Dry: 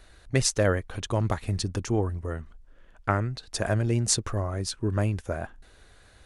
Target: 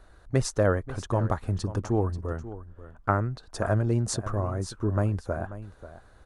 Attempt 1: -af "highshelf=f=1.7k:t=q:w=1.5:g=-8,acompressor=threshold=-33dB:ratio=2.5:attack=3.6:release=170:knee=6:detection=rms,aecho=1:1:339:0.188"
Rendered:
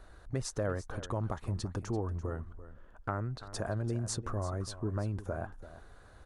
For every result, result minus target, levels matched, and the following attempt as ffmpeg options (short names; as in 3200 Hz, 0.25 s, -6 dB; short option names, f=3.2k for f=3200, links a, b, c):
compressor: peak gain reduction +12 dB; echo 0.198 s early
-af "highshelf=f=1.7k:t=q:w=1.5:g=-8,aecho=1:1:339:0.188"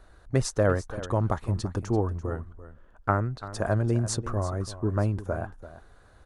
echo 0.198 s early
-af "highshelf=f=1.7k:t=q:w=1.5:g=-8,aecho=1:1:537:0.188"